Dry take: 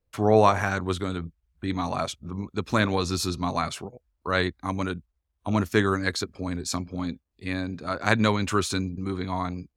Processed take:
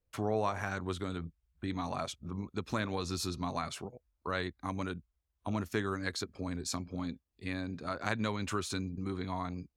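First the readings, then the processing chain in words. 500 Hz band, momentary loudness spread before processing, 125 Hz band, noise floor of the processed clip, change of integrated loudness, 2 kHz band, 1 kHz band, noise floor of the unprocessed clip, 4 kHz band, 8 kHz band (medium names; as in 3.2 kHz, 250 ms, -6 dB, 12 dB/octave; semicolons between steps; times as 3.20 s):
-11.5 dB, 13 LU, -9.5 dB, -83 dBFS, -10.5 dB, -11.0 dB, -11.0 dB, -78 dBFS, -9.0 dB, -8.0 dB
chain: compression 2:1, threshold -29 dBFS, peak gain reduction 9.5 dB; trim -5 dB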